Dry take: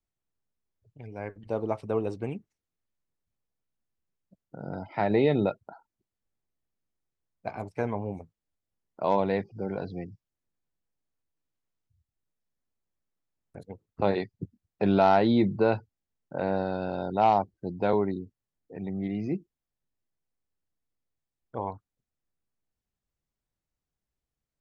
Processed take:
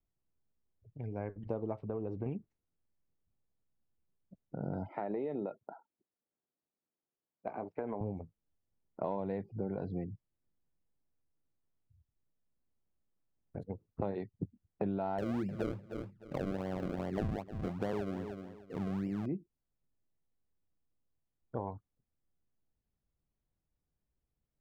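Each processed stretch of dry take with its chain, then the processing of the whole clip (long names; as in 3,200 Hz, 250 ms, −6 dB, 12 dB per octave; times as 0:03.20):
0:01.79–0:02.26: low-pass filter 2,200 Hz 6 dB per octave + downward compressor 2 to 1, threshold −36 dBFS
0:04.89–0:08.01: high-pass filter 290 Hz + high-frequency loss of the air 250 metres + downward compressor 2.5 to 1, threshold −31 dBFS
0:15.18–0:19.26: sample-and-hold swept by an LFO 34× 2.5 Hz + repeating echo 305 ms, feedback 20%, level −17 dB
whole clip: low-pass filter 1,000 Hz 6 dB per octave; low-shelf EQ 390 Hz +4 dB; downward compressor 6 to 1, threshold −33 dBFS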